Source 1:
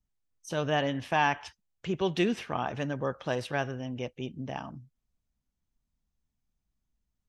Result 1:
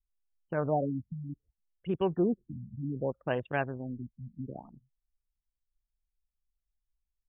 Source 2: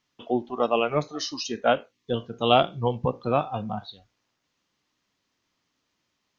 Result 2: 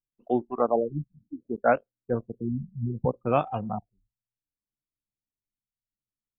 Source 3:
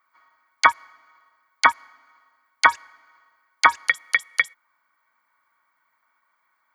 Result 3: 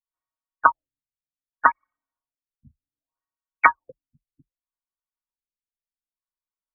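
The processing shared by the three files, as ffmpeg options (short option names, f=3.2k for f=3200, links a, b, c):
-af "anlmdn=10,afftfilt=real='re*lt(b*sr/1024,230*pow(3700/230,0.5+0.5*sin(2*PI*0.65*pts/sr)))':imag='im*lt(b*sr/1024,230*pow(3700/230,0.5+0.5*sin(2*PI*0.65*pts/sr)))':win_size=1024:overlap=0.75"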